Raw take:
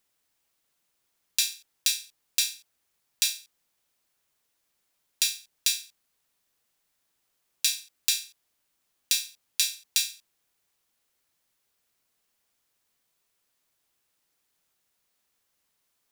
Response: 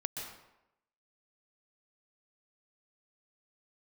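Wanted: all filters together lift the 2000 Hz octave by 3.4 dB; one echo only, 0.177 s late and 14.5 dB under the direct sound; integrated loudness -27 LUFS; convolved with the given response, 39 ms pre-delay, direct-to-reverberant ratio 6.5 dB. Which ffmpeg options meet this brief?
-filter_complex "[0:a]equalizer=f=2k:t=o:g=5,aecho=1:1:177:0.188,asplit=2[a][b];[1:a]atrim=start_sample=2205,adelay=39[c];[b][c]afir=irnorm=-1:irlink=0,volume=-8dB[d];[a][d]amix=inputs=2:normalize=0,volume=-1dB"

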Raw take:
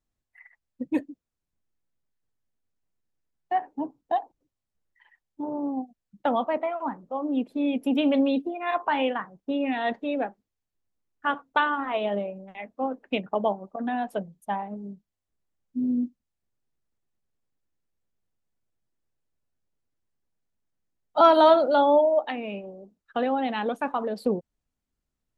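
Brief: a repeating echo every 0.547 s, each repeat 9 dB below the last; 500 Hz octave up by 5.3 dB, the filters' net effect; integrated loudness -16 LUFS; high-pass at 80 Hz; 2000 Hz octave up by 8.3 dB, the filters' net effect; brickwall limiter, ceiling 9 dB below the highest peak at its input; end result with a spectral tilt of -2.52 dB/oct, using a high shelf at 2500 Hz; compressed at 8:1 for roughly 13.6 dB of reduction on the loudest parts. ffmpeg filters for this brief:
-af "highpass=80,equalizer=f=500:t=o:g=6,equalizer=f=2k:t=o:g=7.5,highshelf=f=2.5k:g=7.5,acompressor=threshold=-22dB:ratio=8,alimiter=limit=-18.5dB:level=0:latency=1,aecho=1:1:547|1094|1641|2188:0.355|0.124|0.0435|0.0152,volume=13.5dB"

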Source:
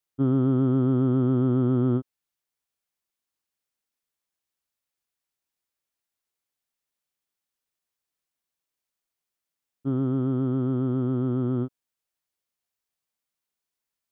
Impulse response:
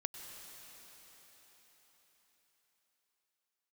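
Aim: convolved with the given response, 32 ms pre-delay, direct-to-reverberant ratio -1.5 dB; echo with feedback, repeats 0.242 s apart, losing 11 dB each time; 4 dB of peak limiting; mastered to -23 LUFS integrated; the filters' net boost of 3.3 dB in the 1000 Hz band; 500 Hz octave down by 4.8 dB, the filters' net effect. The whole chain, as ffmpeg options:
-filter_complex "[0:a]equalizer=f=500:t=o:g=-8.5,equalizer=f=1k:t=o:g=6.5,alimiter=limit=-19dB:level=0:latency=1,aecho=1:1:242|484|726:0.282|0.0789|0.0221,asplit=2[a][b];[1:a]atrim=start_sample=2205,adelay=32[c];[b][c]afir=irnorm=-1:irlink=0,volume=2dB[d];[a][d]amix=inputs=2:normalize=0,volume=1dB"

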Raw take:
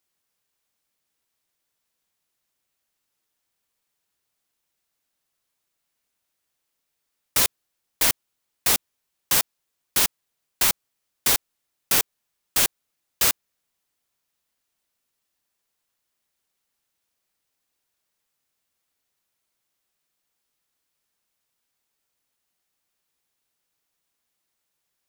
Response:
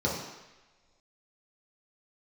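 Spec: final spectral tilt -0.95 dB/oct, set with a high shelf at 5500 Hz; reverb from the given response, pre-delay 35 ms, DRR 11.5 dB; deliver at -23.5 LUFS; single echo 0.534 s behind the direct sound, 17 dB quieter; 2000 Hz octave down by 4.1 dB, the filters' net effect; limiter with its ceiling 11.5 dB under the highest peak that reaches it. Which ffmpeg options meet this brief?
-filter_complex "[0:a]equalizer=f=2k:t=o:g=-4.5,highshelf=f=5.5k:g=-5.5,alimiter=limit=-19.5dB:level=0:latency=1,aecho=1:1:534:0.141,asplit=2[a][b];[1:a]atrim=start_sample=2205,adelay=35[c];[b][c]afir=irnorm=-1:irlink=0,volume=-22dB[d];[a][d]amix=inputs=2:normalize=0,volume=10dB"

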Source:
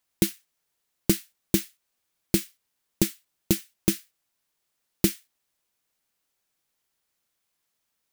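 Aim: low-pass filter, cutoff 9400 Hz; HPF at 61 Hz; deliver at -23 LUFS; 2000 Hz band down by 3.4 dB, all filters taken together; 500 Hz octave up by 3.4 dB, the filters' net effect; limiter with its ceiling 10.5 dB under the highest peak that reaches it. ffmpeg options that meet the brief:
-af "highpass=61,lowpass=9.4k,equalizer=f=500:t=o:g=6,equalizer=f=2k:t=o:g=-4.5,volume=12.5dB,alimiter=limit=-3dB:level=0:latency=1"

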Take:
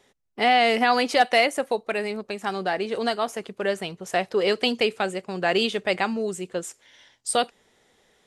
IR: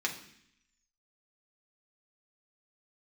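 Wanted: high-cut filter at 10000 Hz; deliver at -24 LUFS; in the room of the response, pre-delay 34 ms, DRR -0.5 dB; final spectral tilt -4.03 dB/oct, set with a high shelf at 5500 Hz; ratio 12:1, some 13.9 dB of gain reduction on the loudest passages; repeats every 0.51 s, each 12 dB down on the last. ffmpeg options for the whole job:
-filter_complex "[0:a]lowpass=10k,highshelf=f=5.5k:g=-9,acompressor=threshold=-28dB:ratio=12,aecho=1:1:510|1020|1530:0.251|0.0628|0.0157,asplit=2[a][b];[1:a]atrim=start_sample=2205,adelay=34[c];[b][c]afir=irnorm=-1:irlink=0,volume=-5.5dB[d];[a][d]amix=inputs=2:normalize=0,volume=7dB"

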